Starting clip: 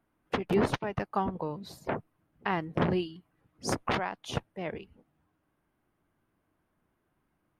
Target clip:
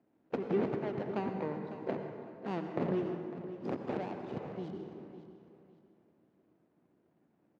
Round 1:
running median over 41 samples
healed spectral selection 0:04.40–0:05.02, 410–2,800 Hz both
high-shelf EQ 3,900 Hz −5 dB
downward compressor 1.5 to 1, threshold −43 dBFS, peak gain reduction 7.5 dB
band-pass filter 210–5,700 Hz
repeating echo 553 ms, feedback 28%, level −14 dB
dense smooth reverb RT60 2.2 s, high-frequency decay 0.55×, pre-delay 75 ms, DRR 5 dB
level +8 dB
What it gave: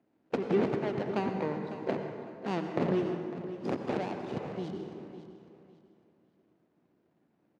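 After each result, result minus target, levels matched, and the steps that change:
4,000 Hz band +4.0 dB; downward compressor: peak gain reduction −4 dB
change: high-shelf EQ 3,900 Hz −15.5 dB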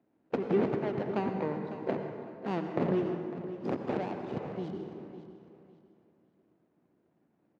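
downward compressor: peak gain reduction −4 dB
change: downward compressor 1.5 to 1, threshold −54.5 dBFS, peak gain reduction 11.5 dB

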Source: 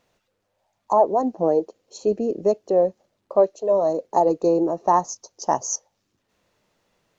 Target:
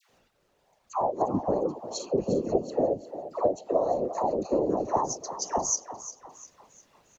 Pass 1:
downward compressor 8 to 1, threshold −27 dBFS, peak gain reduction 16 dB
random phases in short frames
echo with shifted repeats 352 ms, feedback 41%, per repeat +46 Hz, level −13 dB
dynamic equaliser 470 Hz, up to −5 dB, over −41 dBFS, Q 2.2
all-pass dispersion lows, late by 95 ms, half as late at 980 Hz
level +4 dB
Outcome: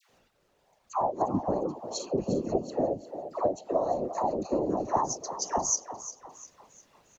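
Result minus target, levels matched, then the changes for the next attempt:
2,000 Hz band +3.5 dB
change: dynamic equaliser 1,600 Hz, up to −5 dB, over −41 dBFS, Q 2.2

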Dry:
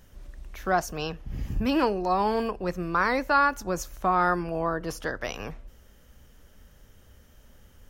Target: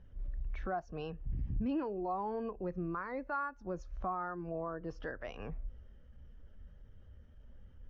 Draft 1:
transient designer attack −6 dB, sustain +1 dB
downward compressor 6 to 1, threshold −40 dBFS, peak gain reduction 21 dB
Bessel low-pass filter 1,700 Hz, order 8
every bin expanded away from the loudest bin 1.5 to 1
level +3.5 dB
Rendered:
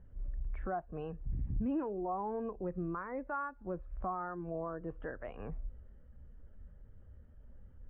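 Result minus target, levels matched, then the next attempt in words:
2,000 Hz band −2.5 dB
transient designer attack −6 dB, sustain +1 dB
downward compressor 6 to 1, threshold −40 dBFS, peak gain reduction 21 dB
Bessel low-pass filter 3,800 Hz, order 8
every bin expanded away from the loudest bin 1.5 to 1
level +3.5 dB

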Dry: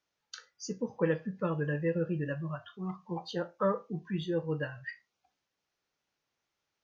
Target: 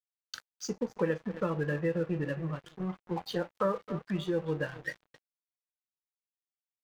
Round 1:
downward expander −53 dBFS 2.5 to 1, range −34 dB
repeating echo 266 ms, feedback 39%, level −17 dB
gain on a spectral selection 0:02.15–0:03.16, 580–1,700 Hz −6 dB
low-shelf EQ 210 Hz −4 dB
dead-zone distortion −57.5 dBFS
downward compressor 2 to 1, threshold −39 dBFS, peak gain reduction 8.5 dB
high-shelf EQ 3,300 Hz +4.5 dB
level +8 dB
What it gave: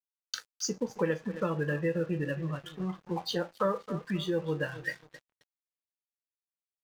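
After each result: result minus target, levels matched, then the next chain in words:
8,000 Hz band +7.0 dB; dead-zone distortion: distortion −7 dB
downward expander −53 dBFS 2.5 to 1, range −34 dB
repeating echo 266 ms, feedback 39%, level −17 dB
gain on a spectral selection 0:02.15–0:03.16, 580–1,700 Hz −6 dB
low-shelf EQ 210 Hz −4 dB
dead-zone distortion −57.5 dBFS
downward compressor 2 to 1, threshold −39 dBFS, peak gain reduction 8.5 dB
high-shelf EQ 3,300 Hz −3.5 dB
level +8 dB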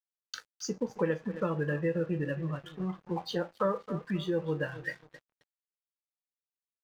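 dead-zone distortion: distortion −7 dB
downward expander −53 dBFS 2.5 to 1, range −34 dB
repeating echo 266 ms, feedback 39%, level −17 dB
gain on a spectral selection 0:02.15–0:03.16, 580–1,700 Hz −6 dB
low-shelf EQ 210 Hz −4 dB
dead-zone distortion −50 dBFS
downward compressor 2 to 1, threshold −39 dBFS, peak gain reduction 8.5 dB
high-shelf EQ 3,300 Hz −3.5 dB
level +8 dB

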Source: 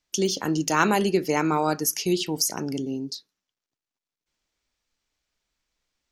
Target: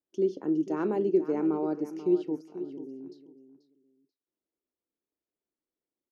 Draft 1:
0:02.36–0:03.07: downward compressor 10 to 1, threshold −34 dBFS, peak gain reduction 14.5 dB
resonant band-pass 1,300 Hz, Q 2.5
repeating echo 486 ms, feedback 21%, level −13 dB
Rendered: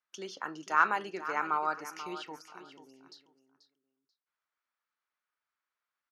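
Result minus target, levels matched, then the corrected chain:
250 Hz band −15.0 dB
0:02.36–0:03.07: downward compressor 10 to 1, threshold −34 dBFS, peak gain reduction 14.5 dB
resonant band-pass 350 Hz, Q 2.5
repeating echo 486 ms, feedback 21%, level −13 dB

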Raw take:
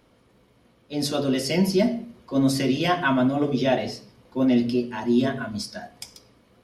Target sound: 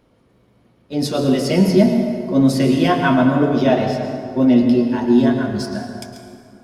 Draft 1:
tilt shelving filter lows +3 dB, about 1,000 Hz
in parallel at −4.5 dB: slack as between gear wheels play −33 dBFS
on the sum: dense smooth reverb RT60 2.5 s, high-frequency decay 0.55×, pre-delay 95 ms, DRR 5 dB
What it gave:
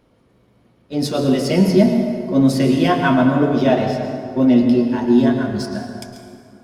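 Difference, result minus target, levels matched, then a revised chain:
slack as between gear wheels: distortion +7 dB
tilt shelving filter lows +3 dB, about 1,000 Hz
in parallel at −4.5 dB: slack as between gear wheels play −40.5 dBFS
on the sum: dense smooth reverb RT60 2.5 s, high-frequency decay 0.55×, pre-delay 95 ms, DRR 5 dB

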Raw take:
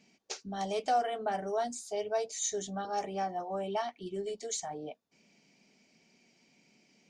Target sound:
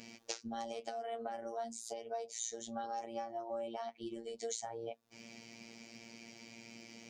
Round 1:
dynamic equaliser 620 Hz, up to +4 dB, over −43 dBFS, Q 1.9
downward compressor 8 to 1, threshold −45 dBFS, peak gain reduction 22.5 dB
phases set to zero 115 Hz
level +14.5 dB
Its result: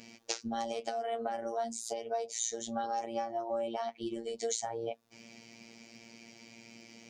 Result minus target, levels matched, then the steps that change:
downward compressor: peak gain reduction −6 dB
change: downward compressor 8 to 1, threshold −52 dBFS, peak gain reduction 28.5 dB

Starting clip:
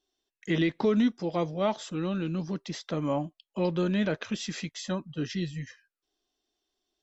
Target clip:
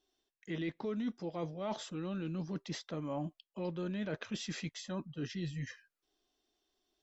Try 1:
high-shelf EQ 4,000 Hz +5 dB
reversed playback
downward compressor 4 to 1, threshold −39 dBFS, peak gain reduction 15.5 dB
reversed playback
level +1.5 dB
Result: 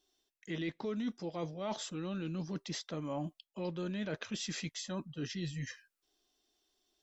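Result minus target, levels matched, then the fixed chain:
8,000 Hz band +5.0 dB
high-shelf EQ 4,000 Hz −3.5 dB
reversed playback
downward compressor 4 to 1, threshold −39 dBFS, peak gain reduction 15.5 dB
reversed playback
level +1.5 dB

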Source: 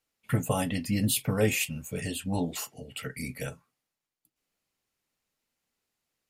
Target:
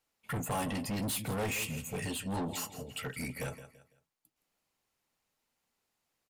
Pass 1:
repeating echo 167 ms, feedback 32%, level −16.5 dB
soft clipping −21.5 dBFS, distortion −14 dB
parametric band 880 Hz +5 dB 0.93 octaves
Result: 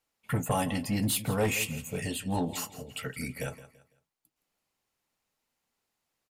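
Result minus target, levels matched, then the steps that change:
soft clipping: distortion −8 dB
change: soft clipping −32 dBFS, distortion −5 dB

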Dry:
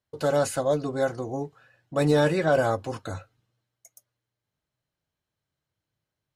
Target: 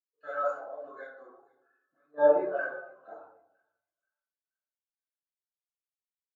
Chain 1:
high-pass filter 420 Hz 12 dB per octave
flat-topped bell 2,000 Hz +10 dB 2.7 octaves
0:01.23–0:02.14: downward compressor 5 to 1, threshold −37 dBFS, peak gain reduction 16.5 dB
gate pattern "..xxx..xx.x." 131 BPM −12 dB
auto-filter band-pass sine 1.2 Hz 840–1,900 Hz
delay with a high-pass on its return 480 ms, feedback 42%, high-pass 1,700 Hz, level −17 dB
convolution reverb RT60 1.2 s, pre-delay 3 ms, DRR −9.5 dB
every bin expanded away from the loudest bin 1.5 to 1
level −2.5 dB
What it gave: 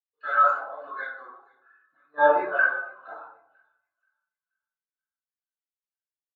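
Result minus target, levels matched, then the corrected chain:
2,000 Hz band +9.0 dB
high-pass filter 420 Hz 12 dB per octave
0:01.23–0:02.14: downward compressor 5 to 1, threshold −37 dBFS, peak gain reduction 14 dB
gate pattern "..xxx..xx.x." 131 BPM −12 dB
auto-filter band-pass sine 1.2 Hz 840–1,900 Hz
delay with a high-pass on its return 480 ms, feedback 42%, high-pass 1,700 Hz, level −17 dB
convolution reverb RT60 1.2 s, pre-delay 3 ms, DRR −9.5 dB
every bin expanded away from the loudest bin 1.5 to 1
level −2.5 dB

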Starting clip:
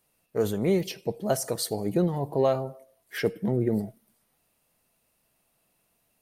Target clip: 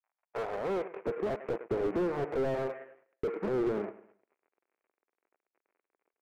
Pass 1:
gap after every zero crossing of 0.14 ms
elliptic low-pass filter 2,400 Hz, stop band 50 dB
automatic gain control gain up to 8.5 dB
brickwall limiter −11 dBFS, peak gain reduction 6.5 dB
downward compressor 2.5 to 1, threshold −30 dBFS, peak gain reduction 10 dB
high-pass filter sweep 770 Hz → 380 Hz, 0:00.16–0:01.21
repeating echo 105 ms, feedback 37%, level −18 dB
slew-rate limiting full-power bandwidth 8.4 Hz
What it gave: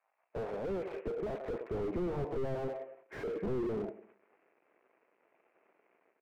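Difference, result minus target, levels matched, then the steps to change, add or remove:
gap after every zero crossing: distortion −10 dB; slew-rate limiting: distortion +8 dB
change: gap after every zero crossing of 0.45 ms
change: slew-rate limiting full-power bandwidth 18.5 Hz

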